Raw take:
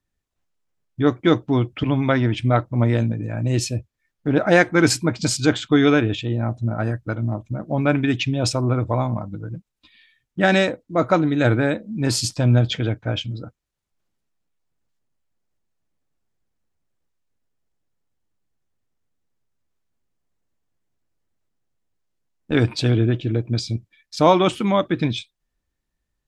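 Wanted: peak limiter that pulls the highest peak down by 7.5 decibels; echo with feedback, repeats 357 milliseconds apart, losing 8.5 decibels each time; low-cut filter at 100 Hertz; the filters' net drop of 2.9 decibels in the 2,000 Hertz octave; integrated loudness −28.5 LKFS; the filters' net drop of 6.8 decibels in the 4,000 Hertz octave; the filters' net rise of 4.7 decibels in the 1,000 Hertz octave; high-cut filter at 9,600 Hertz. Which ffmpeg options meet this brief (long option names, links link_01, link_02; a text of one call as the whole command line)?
ffmpeg -i in.wav -af "highpass=100,lowpass=9600,equalizer=frequency=1000:width_type=o:gain=8,equalizer=frequency=2000:width_type=o:gain=-6,equalizer=frequency=4000:width_type=o:gain=-7.5,alimiter=limit=-6.5dB:level=0:latency=1,aecho=1:1:357|714|1071|1428:0.376|0.143|0.0543|0.0206,volume=-7dB" out.wav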